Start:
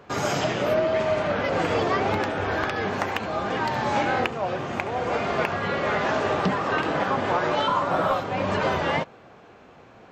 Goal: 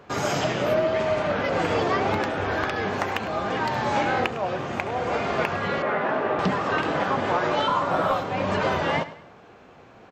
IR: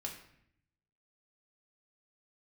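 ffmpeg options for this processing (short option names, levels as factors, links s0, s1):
-filter_complex "[0:a]asettb=1/sr,asplit=3[s0][s1][s2];[s0]atrim=end=5.824[s3];[s1]atrim=start=5.82:end=6.39,asetpts=PTS-STARTPTS,afade=t=in:d=0.004:c=qsin,afade=t=out:st=0.566:d=0.004:c=qsin,highpass=170,lowpass=2100[s4];[s2]atrim=start=6.386[s5];[s3][s4]acrossfade=d=0.004:c1=hsin:c2=qsin[s6];[s6][s5]acrossfade=d=0.004:c1=qsin:c2=hsin,asplit=2[s7][s8];[s8]aecho=0:1:104|208|312:0.158|0.0571|0.0205[s9];[s7][s9]amix=inputs=2:normalize=0"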